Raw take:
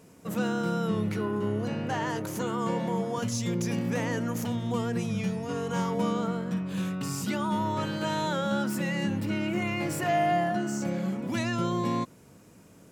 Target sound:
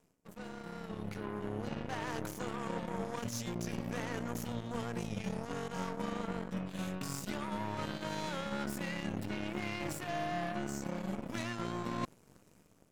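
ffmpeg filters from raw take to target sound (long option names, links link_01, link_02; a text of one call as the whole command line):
ffmpeg -i in.wav -af "areverse,acompressor=threshold=-41dB:ratio=5,areverse,aeval=exprs='0.0355*(cos(1*acos(clip(val(0)/0.0355,-1,1)))-cos(1*PI/2))+0.00447*(cos(7*acos(clip(val(0)/0.0355,-1,1)))-cos(7*PI/2))+0.00141*(cos(8*acos(clip(val(0)/0.0355,-1,1)))-cos(8*PI/2))':channel_layout=same,dynaudnorm=framelen=700:gausssize=3:maxgain=8.5dB,volume=-3dB" out.wav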